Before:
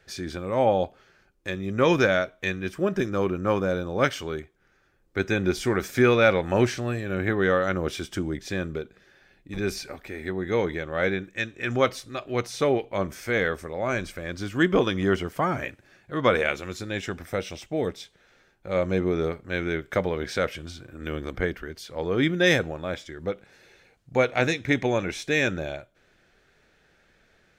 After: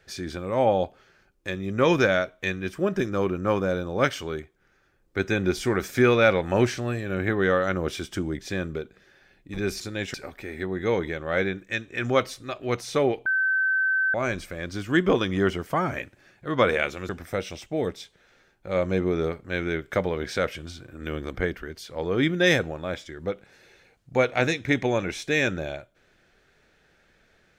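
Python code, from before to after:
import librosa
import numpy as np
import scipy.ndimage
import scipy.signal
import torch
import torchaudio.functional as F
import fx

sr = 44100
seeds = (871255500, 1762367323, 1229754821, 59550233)

y = fx.edit(x, sr, fx.bleep(start_s=12.92, length_s=0.88, hz=1540.0, db=-20.0),
    fx.move(start_s=16.75, length_s=0.34, to_s=9.8), tone=tone)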